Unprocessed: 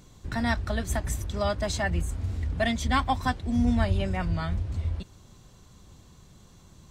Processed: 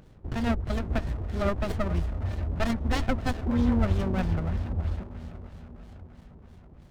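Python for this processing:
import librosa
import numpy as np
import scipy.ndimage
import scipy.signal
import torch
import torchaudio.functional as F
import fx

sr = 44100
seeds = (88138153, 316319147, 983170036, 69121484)

y = fx.echo_diffused(x, sr, ms=476, feedback_pct=57, wet_db=-13.5)
y = fx.filter_lfo_lowpass(y, sr, shape='sine', hz=3.1, low_hz=440.0, high_hz=4900.0, q=2.5)
y = fx.running_max(y, sr, window=33)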